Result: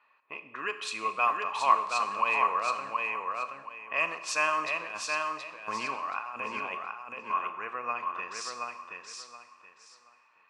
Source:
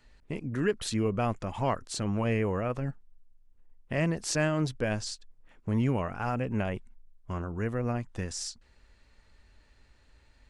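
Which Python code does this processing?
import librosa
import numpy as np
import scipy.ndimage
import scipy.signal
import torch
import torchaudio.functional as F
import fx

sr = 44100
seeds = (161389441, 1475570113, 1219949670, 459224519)

p1 = scipy.signal.sosfilt(scipy.signal.butter(2, 840.0, 'highpass', fs=sr, output='sos'), x)
p2 = fx.env_lowpass(p1, sr, base_hz=1900.0, full_db=-30.5)
p3 = fx.high_shelf(p2, sr, hz=6700.0, db=-5.5)
p4 = fx.over_compress(p3, sr, threshold_db=-44.0, ratio=-1.0, at=(4.81, 6.75))
p5 = fx.small_body(p4, sr, hz=(1100.0, 2500.0), ring_ms=25, db=18)
p6 = p5 + fx.echo_feedback(p5, sr, ms=725, feedback_pct=24, wet_db=-4, dry=0)
y = fx.rev_schroeder(p6, sr, rt60_s=1.0, comb_ms=29, drr_db=10.0)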